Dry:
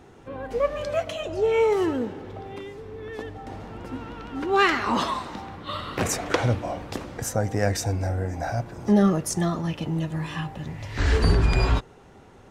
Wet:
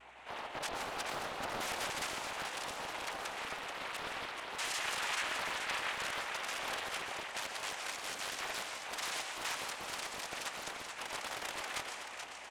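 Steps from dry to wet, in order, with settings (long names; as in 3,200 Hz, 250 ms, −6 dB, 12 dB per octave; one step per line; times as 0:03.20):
each half-wave held at its own peak
linear-prediction vocoder at 8 kHz pitch kept
reversed playback
downward compressor 12 to 1, threshold −26 dBFS, peak gain reduction 18 dB
reversed playback
low-pass filter 1,600 Hz 24 dB per octave
wrap-around overflow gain 22 dB
cochlear-implant simulation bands 4
brickwall limiter −26 dBFS, peak gain reduction 11.5 dB
high-pass filter 1,000 Hz 12 dB per octave
repeating echo 432 ms, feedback 58%, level −6.5 dB
on a send at −5 dB: convolution reverb, pre-delay 111 ms
on the sum: mains hum 60 Hz, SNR 32 dB
highs frequency-modulated by the lows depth 0.86 ms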